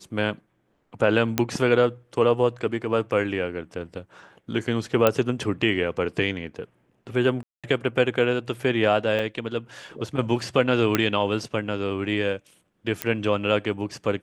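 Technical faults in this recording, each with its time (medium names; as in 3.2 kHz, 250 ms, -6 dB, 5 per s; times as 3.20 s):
1.38 s: pop -5 dBFS
5.07 s: pop -5 dBFS
7.43–7.64 s: dropout 206 ms
9.19 s: dropout 3.8 ms
10.95 s: pop -5 dBFS
13.02 s: pop -7 dBFS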